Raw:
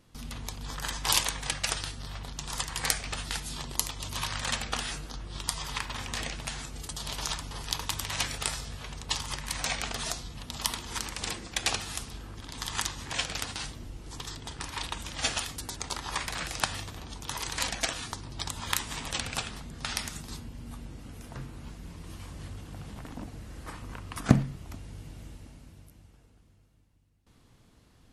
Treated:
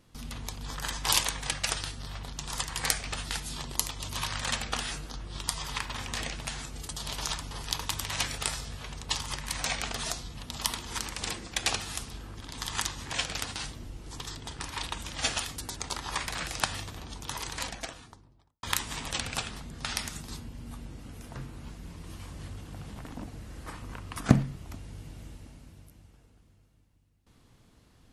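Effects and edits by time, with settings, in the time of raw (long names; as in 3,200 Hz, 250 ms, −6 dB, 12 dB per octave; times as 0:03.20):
0:17.17–0:18.63: fade out and dull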